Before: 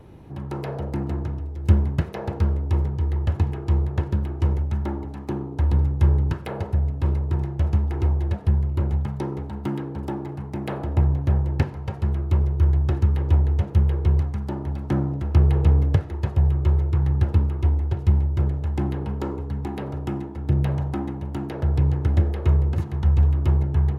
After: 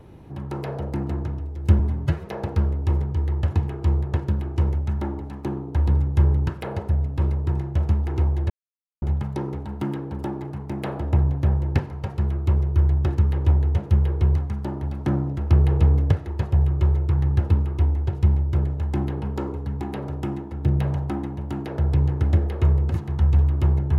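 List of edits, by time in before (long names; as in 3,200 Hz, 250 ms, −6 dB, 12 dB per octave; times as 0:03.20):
0:01.79–0:02.11: time-stretch 1.5×
0:08.34–0:08.86: silence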